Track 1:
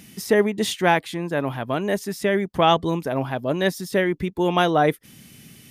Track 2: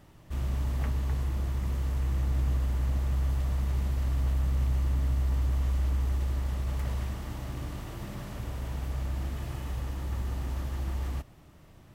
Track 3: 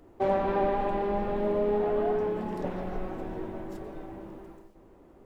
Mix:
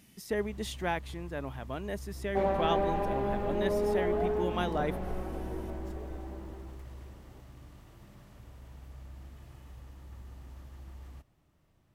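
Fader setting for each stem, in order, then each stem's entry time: −14.0, −15.0, −3.0 decibels; 0.00, 0.00, 2.15 seconds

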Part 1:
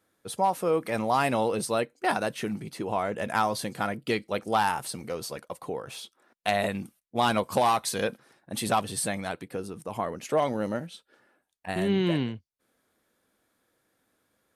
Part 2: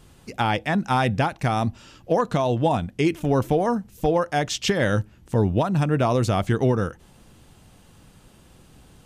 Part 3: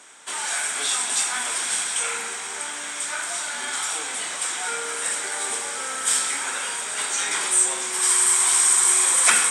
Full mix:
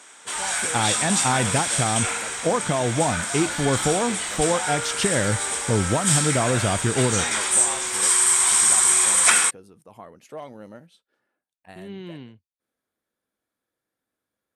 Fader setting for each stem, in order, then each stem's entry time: −12.0, −1.5, +0.5 decibels; 0.00, 0.35, 0.00 seconds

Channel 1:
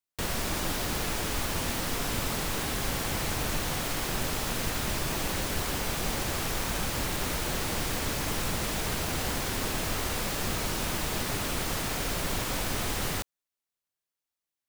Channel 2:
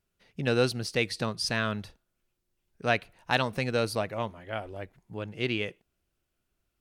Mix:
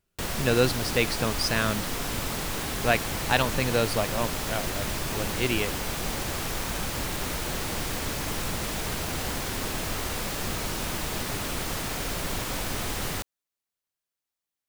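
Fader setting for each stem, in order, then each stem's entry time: 0.0, +2.5 decibels; 0.00, 0.00 seconds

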